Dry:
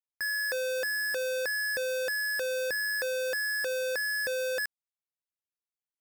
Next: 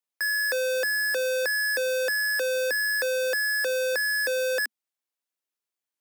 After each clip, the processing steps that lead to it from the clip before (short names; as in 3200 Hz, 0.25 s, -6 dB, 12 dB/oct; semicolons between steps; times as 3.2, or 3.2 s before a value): steep high-pass 220 Hz 96 dB/oct; gain +5 dB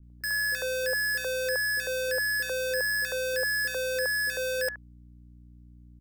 hum 60 Hz, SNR 22 dB; three bands offset in time lows, highs, mids 30/100 ms, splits 330/1400 Hz; gain -2 dB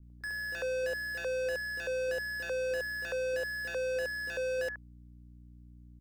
slew limiter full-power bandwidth 41 Hz; gain -2 dB